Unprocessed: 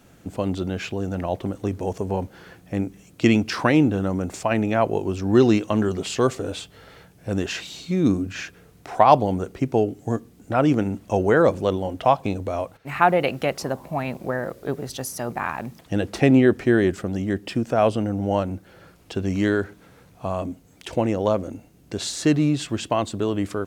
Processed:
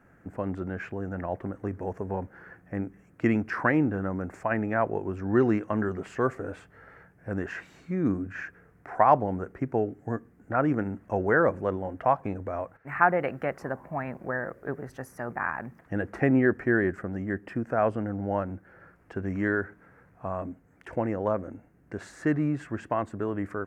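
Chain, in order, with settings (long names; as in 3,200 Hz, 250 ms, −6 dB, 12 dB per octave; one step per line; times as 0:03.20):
high shelf with overshoot 2,500 Hz −13 dB, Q 3
level −7 dB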